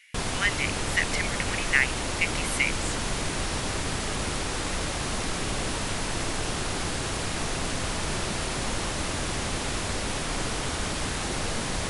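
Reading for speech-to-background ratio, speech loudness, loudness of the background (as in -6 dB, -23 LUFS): 1.5 dB, -28.0 LUFS, -29.5 LUFS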